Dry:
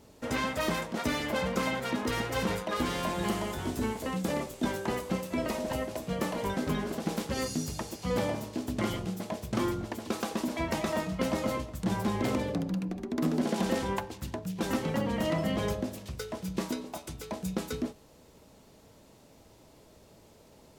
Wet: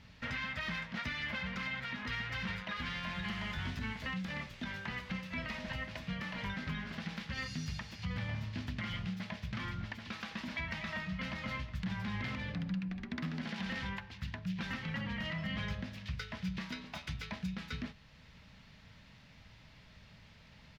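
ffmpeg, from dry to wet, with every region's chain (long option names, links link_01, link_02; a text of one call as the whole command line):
ffmpeg -i in.wav -filter_complex "[0:a]asettb=1/sr,asplit=3[link_01][link_02][link_03];[link_01]atrim=end=7.984[link_04];[link_02]atrim=start=7.98:end=8.68,asetpts=PTS-STARTPTS,afade=type=in:duration=0.004:curve=qsin,afade=type=out:start_time=0.696:duration=0.004:curve=qsin,highpass=57,equalizer=frequency=85:width_type=o:width=1.1:gain=13[link_05];[link_03]atrim=start=8.676[link_06];[link_04][link_05]acrossfade=duration=0.004:curve1=hsin:curve2=qsin[link_07];[link_07][link_06]acrossfade=duration=0.004:curve1=qsin:curve2=hsin,firequalizer=gain_entry='entry(180,0);entry(340,-18);entry(560,-12);entry(1800,6);entry(5000,-4);entry(8000,-22)':delay=0.05:min_phase=1,alimiter=level_in=7.5dB:limit=-24dB:level=0:latency=1:release=423,volume=-7.5dB,equalizer=frequency=440:width=0.49:gain=-2.5,volume=3.5dB" out.wav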